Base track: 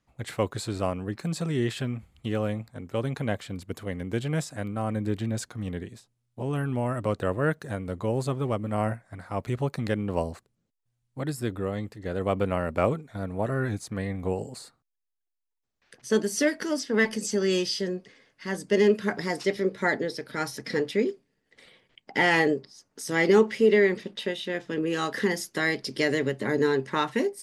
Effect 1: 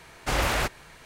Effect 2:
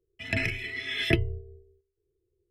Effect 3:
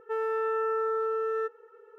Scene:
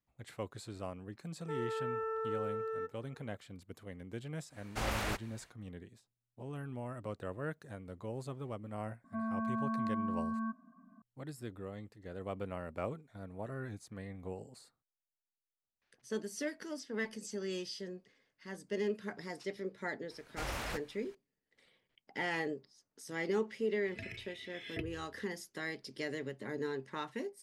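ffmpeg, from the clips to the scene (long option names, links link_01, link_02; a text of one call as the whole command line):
ffmpeg -i bed.wav -i cue0.wav -i cue1.wav -i cue2.wav -filter_complex "[3:a]asplit=2[link_01][link_02];[1:a]asplit=2[link_03][link_04];[0:a]volume=-14.5dB[link_05];[link_02]highpass=frequency=230:width_type=q:width=0.5412,highpass=frequency=230:width_type=q:width=1.307,lowpass=frequency=2000:width_type=q:width=0.5176,lowpass=frequency=2000:width_type=q:width=0.7071,lowpass=frequency=2000:width_type=q:width=1.932,afreqshift=-220[link_06];[2:a]highpass=40[link_07];[link_01]atrim=end=1.98,asetpts=PTS-STARTPTS,volume=-9dB,afade=type=in:duration=0.004:curve=hsin,afade=type=out:start_time=1.976:duration=0.004:curve=hsin,adelay=1390[link_08];[link_03]atrim=end=1.05,asetpts=PTS-STARTPTS,volume=-11dB,afade=type=in:duration=0.1,afade=type=out:start_time=0.95:duration=0.1,adelay=198009S[link_09];[link_06]atrim=end=1.98,asetpts=PTS-STARTPTS,volume=-7dB,afade=type=in:duration=0.004:curve=hsin,afade=type=out:start_time=1.976:duration=0.004:curve=hsin,adelay=9040[link_10];[link_04]atrim=end=1.05,asetpts=PTS-STARTPTS,volume=-14.5dB,afade=type=in:duration=0.004:curve=hsin,afade=type=out:start_time=1.046:duration=0.004:curve=hsin,adelay=20100[link_11];[link_07]atrim=end=2.5,asetpts=PTS-STARTPTS,volume=-18dB,afade=type=in:duration=0.004:curve=hsin,afade=type=out:start_time=2.496:duration=0.004:curve=hsin,adelay=23660[link_12];[link_05][link_08][link_09][link_10][link_11][link_12]amix=inputs=6:normalize=0" out.wav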